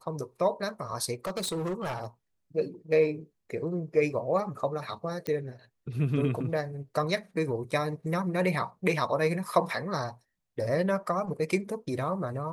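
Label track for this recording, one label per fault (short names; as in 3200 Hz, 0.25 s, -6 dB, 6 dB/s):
1.250000	2.040000	clipped -28 dBFS
5.270000	5.270000	pop -19 dBFS
7.710000	7.720000	gap 6.6 ms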